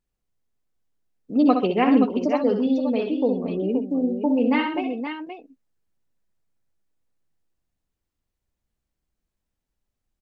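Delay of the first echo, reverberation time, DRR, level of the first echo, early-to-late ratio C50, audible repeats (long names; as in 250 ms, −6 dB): 63 ms, no reverb audible, no reverb audible, −7.5 dB, no reverb audible, 3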